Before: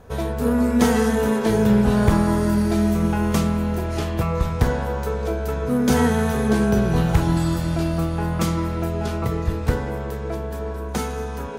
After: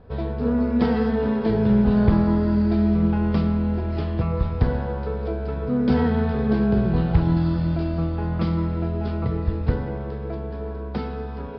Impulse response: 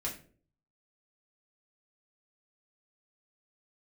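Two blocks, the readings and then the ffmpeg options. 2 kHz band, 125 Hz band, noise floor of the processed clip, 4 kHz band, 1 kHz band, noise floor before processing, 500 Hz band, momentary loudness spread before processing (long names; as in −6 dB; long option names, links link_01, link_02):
−7.0 dB, −0.5 dB, −31 dBFS, −8.5 dB, −5.5 dB, −29 dBFS, −3.0 dB, 10 LU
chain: -filter_complex "[0:a]tiltshelf=frequency=660:gain=4,asplit=2[link_01][link_02];[1:a]atrim=start_sample=2205,asetrate=33516,aresample=44100,adelay=101[link_03];[link_02][link_03]afir=irnorm=-1:irlink=0,volume=-20.5dB[link_04];[link_01][link_04]amix=inputs=2:normalize=0,aresample=11025,aresample=44100,volume=-4.5dB"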